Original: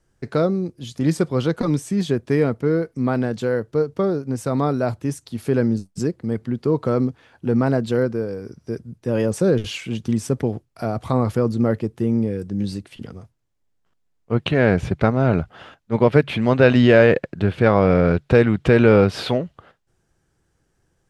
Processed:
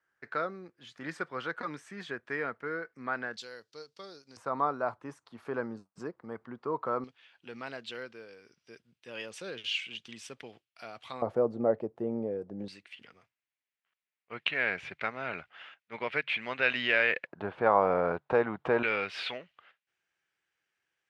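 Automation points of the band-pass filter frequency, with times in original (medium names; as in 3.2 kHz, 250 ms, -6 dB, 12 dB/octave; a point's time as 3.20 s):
band-pass filter, Q 2.3
1.6 kHz
from 3.37 s 4.6 kHz
from 4.37 s 1.1 kHz
from 7.04 s 2.9 kHz
from 11.22 s 660 Hz
from 12.68 s 2.3 kHz
from 17.27 s 920 Hz
from 18.83 s 2.4 kHz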